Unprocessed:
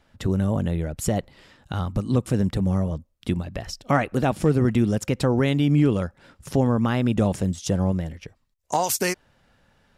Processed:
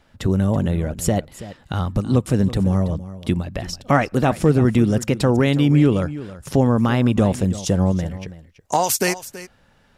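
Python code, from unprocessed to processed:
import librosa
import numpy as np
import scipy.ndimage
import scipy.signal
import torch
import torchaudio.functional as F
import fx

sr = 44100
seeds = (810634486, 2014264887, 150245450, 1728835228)

y = x + 10.0 ** (-15.5 / 20.0) * np.pad(x, (int(329 * sr / 1000.0), 0))[:len(x)]
y = y * 10.0 ** (4.0 / 20.0)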